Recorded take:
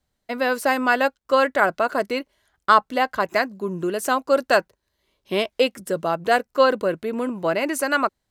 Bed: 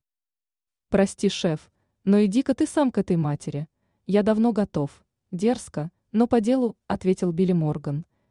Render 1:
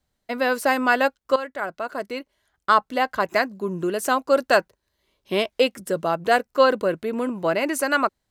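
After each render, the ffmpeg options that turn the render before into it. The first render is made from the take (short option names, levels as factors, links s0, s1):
-filter_complex "[0:a]asplit=2[s0][s1];[s0]atrim=end=1.36,asetpts=PTS-STARTPTS,afade=t=out:st=1.356:d=0.004:c=hsin:silence=0.211349[s2];[s1]atrim=start=1.36,asetpts=PTS-STARTPTS,afade=t=in:d=1.95:silence=0.211349[s3];[s2][s3]concat=n=2:v=0:a=1"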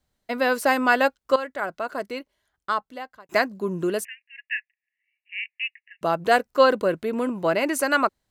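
-filter_complex "[0:a]asplit=3[s0][s1][s2];[s0]afade=t=out:st=4.03:d=0.02[s3];[s1]asuperpass=centerf=2200:order=20:qfactor=1.9,afade=t=in:st=4.03:d=0.02,afade=t=out:st=6.01:d=0.02[s4];[s2]afade=t=in:st=6.01:d=0.02[s5];[s3][s4][s5]amix=inputs=3:normalize=0,asplit=2[s6][s7];[s6]atrim=end=3.29,asetpts=PTS-STARTPTS,afade=t=out:st=1.92:d=1.37[s8];[s7]atrim=start=3.29,asetpts=PTS-STARTPTS,afade=t=in:d=0.004:c=hsin[s9];[s8][s9]concat=n=2:v=0:a=1"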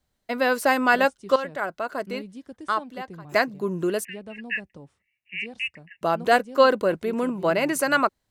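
-filter_complex "[1:a]volume=0.106[s0];[0:a][s0]amix=inputs=2:normalize=0"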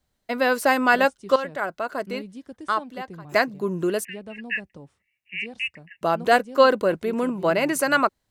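-af "volume=1.12"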